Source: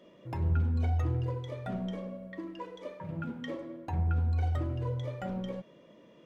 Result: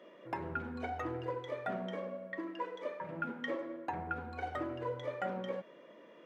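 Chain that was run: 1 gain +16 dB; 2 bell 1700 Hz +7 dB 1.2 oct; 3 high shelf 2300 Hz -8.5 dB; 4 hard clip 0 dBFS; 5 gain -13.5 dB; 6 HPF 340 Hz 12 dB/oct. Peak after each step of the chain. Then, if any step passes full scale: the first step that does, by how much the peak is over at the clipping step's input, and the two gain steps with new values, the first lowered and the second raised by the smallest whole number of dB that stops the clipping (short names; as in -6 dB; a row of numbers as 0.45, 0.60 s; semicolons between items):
-3.0, -3.0, -3.0, -3.0, -16.5, -24.0 dBFS; no overload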